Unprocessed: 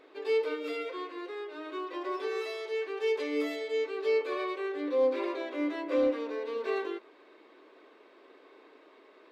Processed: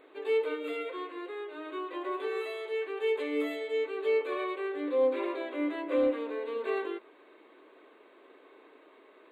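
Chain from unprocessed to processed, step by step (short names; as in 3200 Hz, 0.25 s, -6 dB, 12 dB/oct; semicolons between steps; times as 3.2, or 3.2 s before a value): Butterworth band-stop 5400 Hz, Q 1.5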